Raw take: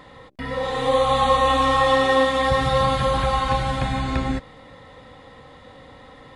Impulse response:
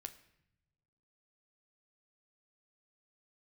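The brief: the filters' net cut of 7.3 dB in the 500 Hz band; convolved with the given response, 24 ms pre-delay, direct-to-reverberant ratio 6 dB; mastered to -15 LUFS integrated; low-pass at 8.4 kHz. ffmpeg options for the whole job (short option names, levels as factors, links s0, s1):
-filter_complex "[0:a]lowpass=8400,equalizer=f=500:t=o:g=-7.5,asplit=2[s0][s1];[1:a]atrim=start_sample=2205,adelay=24[s2];[s1][s2]afir=irnorm=-1:irlink=0,volume=0.841[s3];[s0][s3]amix=inputs=2:normalize=0,volume=2.11"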